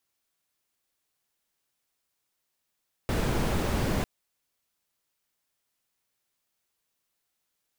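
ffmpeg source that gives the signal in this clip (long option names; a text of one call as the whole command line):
ffmpeg -f lavfi -i "anoisesrc=color=brown:amplitude=0.221:duration=0.95:sample_rate=44100:seed=1" out.wav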